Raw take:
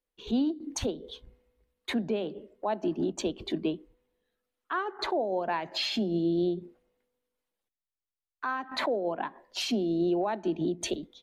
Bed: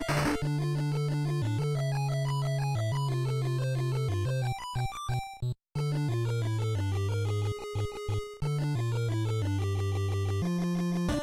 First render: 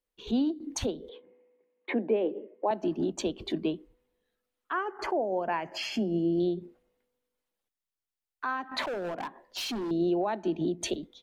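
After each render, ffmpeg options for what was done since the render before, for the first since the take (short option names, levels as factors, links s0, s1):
-filter_complex "[0:a]asettb=1/sr,asplit=3[s0][s1][s2];[s0]atrim=end=1.094[s3];[s1]atrim=start=1.09:end=2.71,asetpts=PTS-STARTPTS,afade=t=in:d=0.004:c=qsin,afade=t=out:st=1.616:d=0.004:c=qsin,highpass=f=220:w=0.5412,highpass=f=220:w=1.3066,equalizer=f=330:t=q:w=4:g=7,equalizer=f=500:t=q:w=4:g=8,equalizer=f=870:t=q:w=4:g=3,equalizer=f=1400:t=q:w=4:g=-7,equalizer=f=2200:t=q:w=4:g=4,lowpass=f=2600:w=0.5412,lowpass=f=2600:w=1.3066[s4];[s2]atrim=start=2.706[s5];[s3][s4]acrossfade=d=0.004:c1=hsin:c2=qsin[s6];[s6][s5]acrossfade=d=0.004:c1=qsin:c2=hsin,asettb=1/sr,asplit=3[s7][s8][s9];[s7]atrim=end=4.724[s10];[s8]atrim=start=4.72:end=6.4,asetpts=PTS-STARTPTS,afade=t=in:d=0.004:c=qsin,afade=t=out:st=1.676:d=0.004:c=qsin,asuperstop=centerf=3800:order=4:qfactor=2.7[s11];[s9]atrim=start=6.396[s12];[s10][s11]acrossfade=d=0.004:c1=hsin:c2=qsin[s13];[s13][s12]acrossfade=d=0.004:c1=qsin:c2=hsin,asettb=1/sr,asplit=3[s14][s15][s16];[s14]atrim=end=8.824[s17];[s15]atrim=start=8.82:end=9.91,asetpts=PTS-STARTPTS,afade=t=in:d=0.004:c=qsin,afade=t=out:st=1.086:d=0.004:c=qsin,asoftclip=type=hard:threshold=0.0282[s18];[s16]atrim=start=9.906[s19];[s17][s18]acrossfade=d=0.004:c1=hsin:c2=qsin[s20];[s20][s19]acrossfade=d=0.004:c1=qsin:c2=hsin"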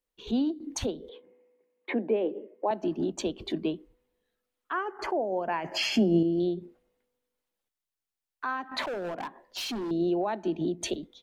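-filter_complex "[0:a]asettb=1/sr,asplit=3[s0][s1][s2];[s0]atrim=end=5.644[s3];[s1]atrim=start=5.64:end=6.23,asetpts=PTS-STARTPTS,afade=t=in:d=0.004:c=qsin,afade=t=out:st=0.586:d=0.004:c=qsin,acontrast=58[s4];[s2]atrim=start=6.226[s5];[s3][s4]acrossfade=d=0.004:c1=hsin:c2=qsin[s6];[s6][s5]acrossfade=d=0.004:c1=qsin:c2=hsin"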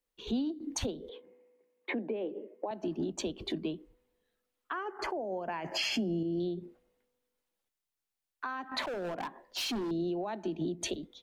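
-filter_complex "[0:a]alimiter=limit=0.075:level=0:latency=1:release=255,acrossover=split=210|3000[s0][s1][s2];[s1]acompressor=threshold=0.0224:ratio=6[s3];[s0][s3][s2]amix=inputs=3:normalize=0"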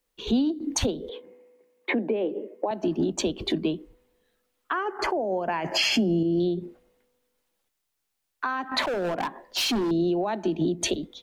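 -af "volume=2.82"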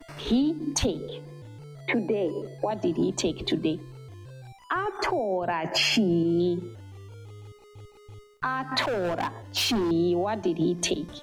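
-filter_complex "[1:a]volume=0.188[s0];[0:a][s0]amix=inputs=2:normalize=0"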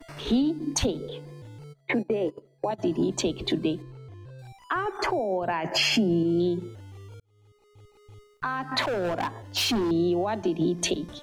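-filter_complex "[0:a]asplit=3[s0][s1][s2];[s0]afade=t=out:st=1.72:d=0.02[s3];[s1]agate=range=0.0891:threshold=0.0355:ratio=16:release=100:detection=peak,afade=t=in:st=1.72:d=0.02,afade=t=out:st=2.78:d=0.02[s4];[s2]afade=t=in:st=2.78:d=0.02[s5];[s3][s4][s5]amix=inputs=3:normalize=0,asettb=1/sr,asplit=3[s6][s7][s8];[s6]atrim=end=3.824[s9];[s7]atrim=start=3.82:end=4.39,asetpts=PTS-STARTPTS,afade=t=in:d=0.004:c=qsin,afade=t=out:st=0.566:d=0.004:c=qsin,aemphasis=mode=reproduction:type=75kf[s10];[s8]atrim=start=4.386[s11];[s9][s10]acrossfade=d=0.004:c1=hsin:c2=qsin[s12];[s12][s11]acrossfade=d=0.004:c1=qsin:c2=hsin,asplit=2[s13][s14];[s13]atrim=end=7.2,asetpts=PTS-STARTPTS,afade=t=out:st=7.196:d=0.004:c=hsin[s15];[s14]atrim=start=7.2,asetpts=PTS-STARTPTS,afade=t=in:d=1.97:c=qsin[s16];[s15][s16]concat=n=2:v=0:a=1"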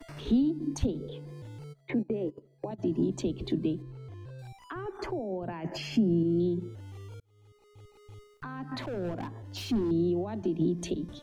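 -filter_complex "[0:a]acrossover=split=360[s0][s1];[s1]acompressor=threshold=0.00251:ratio=2[s2];[s0][s2]amix=inputs=2:normalize=0"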